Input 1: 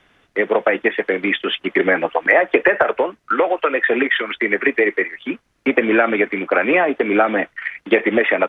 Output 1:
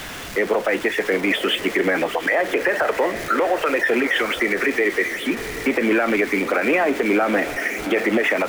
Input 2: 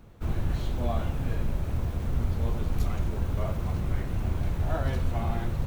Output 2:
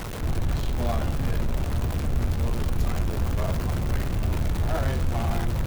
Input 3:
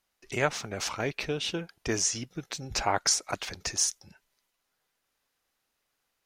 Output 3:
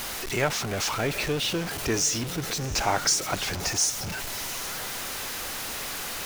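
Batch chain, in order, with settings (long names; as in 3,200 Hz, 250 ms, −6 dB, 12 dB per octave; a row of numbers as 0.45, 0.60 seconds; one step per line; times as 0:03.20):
converter with a step at zero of −27.5 dBFS
feedback delay with all-pass diffusion 737 ms, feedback 40%, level −15 dB
brickwall limiter −10.5 dBFS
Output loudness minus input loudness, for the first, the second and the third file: −2.5, +3.0, +3.0 LU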